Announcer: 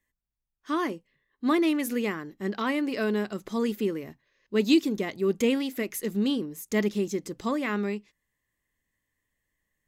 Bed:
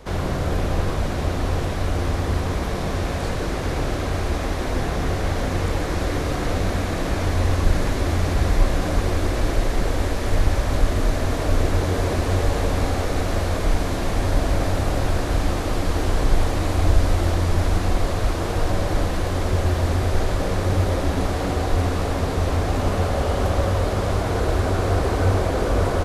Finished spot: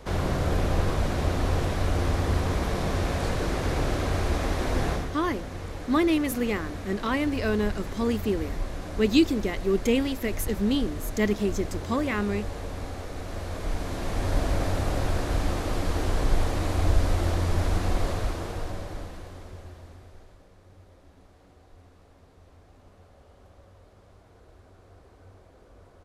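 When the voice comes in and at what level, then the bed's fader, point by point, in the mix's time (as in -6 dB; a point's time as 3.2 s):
4.45 s, +1.0 dB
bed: 4.92 s -2.5 dB
5.14 s -13.5 dB
13.18 s -13.5 dB
14.37 s -5 dB
18.09 s -5 dB
20.5 s -33 dB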